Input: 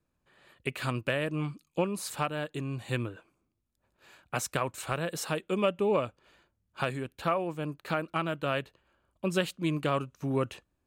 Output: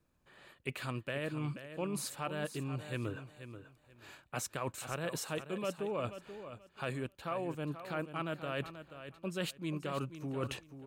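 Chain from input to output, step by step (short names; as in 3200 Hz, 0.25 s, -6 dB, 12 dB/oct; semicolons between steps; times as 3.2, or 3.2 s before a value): reverse; compressor 6:1, threshold -38 dBFS, peak gain reduction 15.5 dB; reverse; feedback echo 0.483 s, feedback 22%, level -11 dB; gain +3 dB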